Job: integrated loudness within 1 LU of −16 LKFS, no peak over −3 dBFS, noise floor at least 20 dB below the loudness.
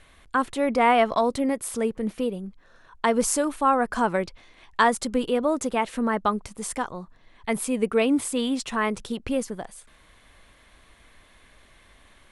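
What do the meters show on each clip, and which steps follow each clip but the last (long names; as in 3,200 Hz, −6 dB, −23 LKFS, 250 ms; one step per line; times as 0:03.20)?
integrated loudness −25.0 LKFS; sample peak −7.5 dBFS; target loudness −16.0 LKFS
→ level +9 dB
brickwall limiter −3 dBFS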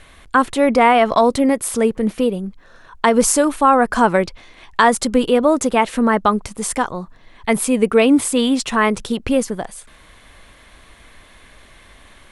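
integrated loudness −16.5 LKFS; sample peak −3.0 dBFS; background noise floor −47 dBFS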